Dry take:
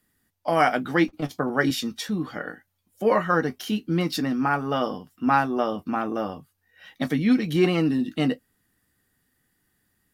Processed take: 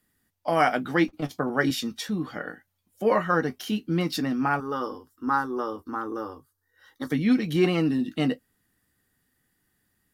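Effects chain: 4.6–7.12 fixed phaser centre 670 Hz, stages 6; gain -1.5 dB

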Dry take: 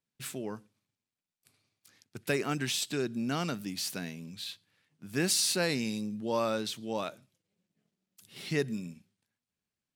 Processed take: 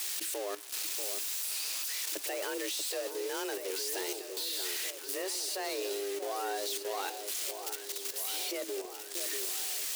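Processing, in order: switching spikes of -21 dBFS; limiter -21.5 dBFS, peak gain reduction 7.5 dB; sample leveller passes 1; HPF 96 Hz 12 dB/oct; high shelf 8500 Hz -7.5 dB; frequency shift +190 Hz; level quantiser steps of 12 dB; echo with dull and thin repeats by turns 0.637 s, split 1100 Hz, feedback 75%, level -7.5 dB

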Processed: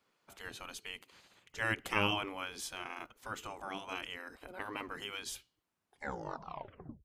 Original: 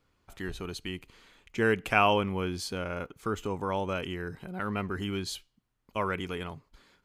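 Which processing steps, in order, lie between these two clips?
tape stop at the end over 1.46 s; spectral gate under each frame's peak -10 dB weak; gain -1 dB

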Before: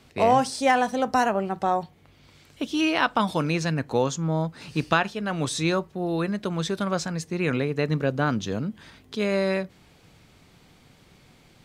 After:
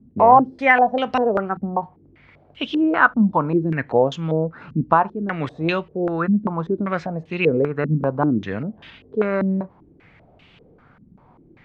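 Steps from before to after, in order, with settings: stepped low-pass 5.1 Hz 230–2900 Hz; gain +1 dB

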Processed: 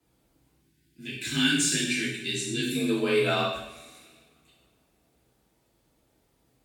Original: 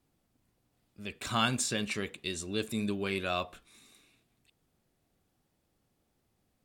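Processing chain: spectral gain 0.56–2.76, 380–1400 Hz -19 dB; two-slope reverb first 0.8 s, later 2.9 s, from -27 dB, DRR -7 dB; frequency shift +34 Hz

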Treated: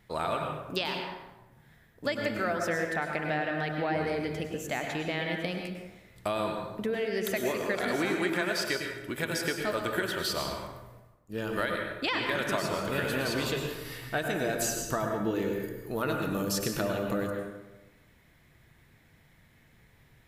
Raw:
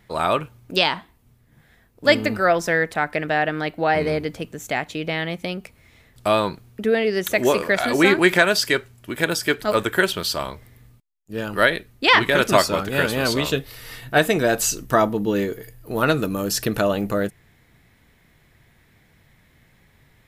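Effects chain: compressor, threshold -22 dBFS, peak gain reduction 12 dB; plate-style reverb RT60 1.1 s, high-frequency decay 0.6×, pre-delay 90 ms, DRR 2 dB; gain -6 dB

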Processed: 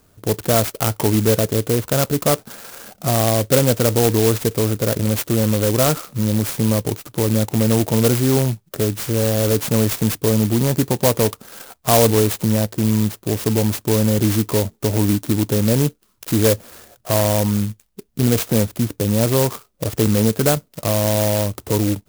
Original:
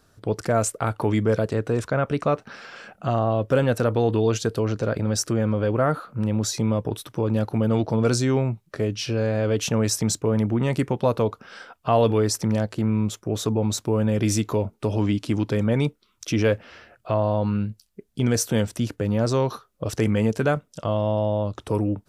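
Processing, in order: high shelf 6300 Hz -6.5 dB; clock jitter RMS 0.14 ms; gain +5 dB

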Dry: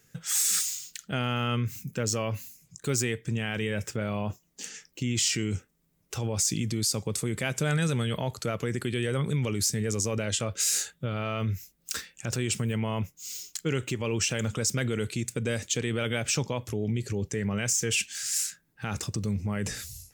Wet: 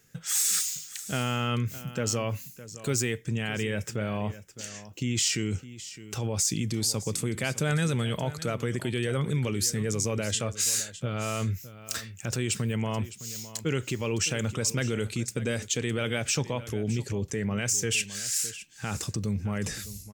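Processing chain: echo 0.611 s -15.5 dB

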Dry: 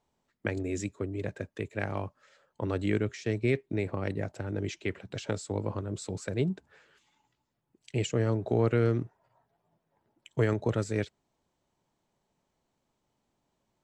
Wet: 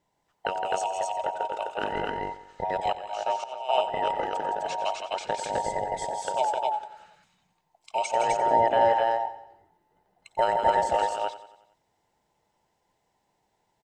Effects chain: band inversion scrambler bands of 1000 Hz; on a send: loudspeakers at several distances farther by 56 m -7 dB, 88 m -2 dB; 2.74–3.69 on the sum: auto swell 0.464 s; feedback echo 91 ms, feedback 52%, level -15 dB; gain +2 dB

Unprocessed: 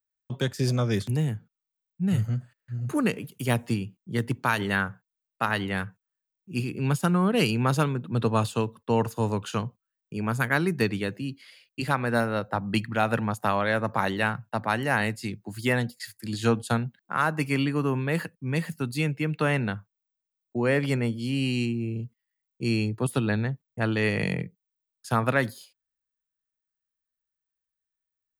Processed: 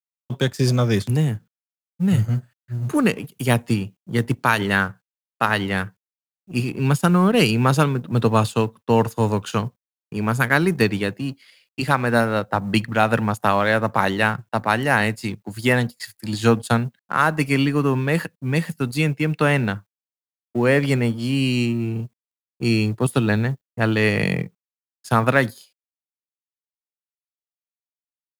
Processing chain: G.711 law mismatch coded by A; gain +7 dB

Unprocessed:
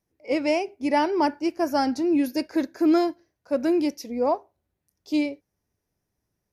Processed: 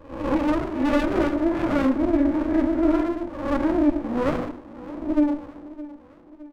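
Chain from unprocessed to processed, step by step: spectral swells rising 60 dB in 0.56 s; in parallel at +2.5 dB: compressor, threshold -34 dBFS, peak gain reduction 17 dB; on the sum: flange 1.1 Hz, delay 6.1 ms, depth 8.2 ms, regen -35%; hard clip -17 dBFS, distortion -20 dB; brick-wall FIR band-pass 200–2100 Hz; doubler 24 ms -13.5 dB; feedback echo 0.614 s, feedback 51%, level -17.5 dB; on a send at -2 dB: reverb RT60 0.70 s, pre-delay 3 ms; on the sum: running maximum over 33 samples

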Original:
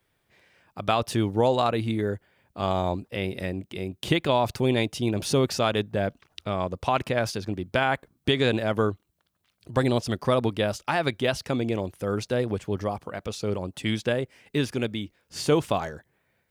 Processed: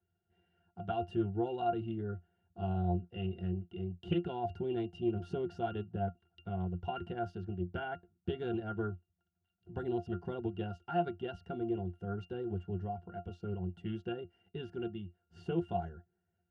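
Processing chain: octave resonator F, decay 0.13 s; Doppler distortion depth 0.14 ms

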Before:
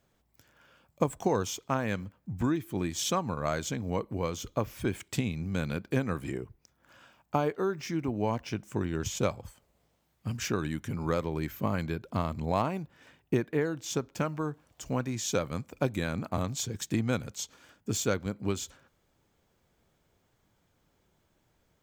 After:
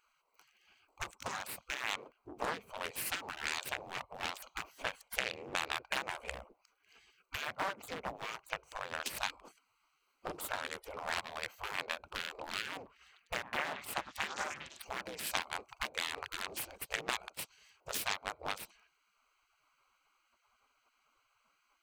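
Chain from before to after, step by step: Wiener smoothing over 25 samples; dynamic EQ 330 Hz, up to +3 dB, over -42 dBFS, Q 1.3; HPF 130 Hz 6 dB/oct; high shelf 3300 Hz +3.5 dB; 12.76–14.82 delay with a stepping band-pass 0.1 s, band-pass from 750 Hz, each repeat 0.7 oct, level -5 dB; compressor 2.5:1, threshold -42 dBFS, peak gain reduction 15 dB; spectral gate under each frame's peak -20 dB weak; Doppler distortion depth 0.64 ms; gain +18 dB

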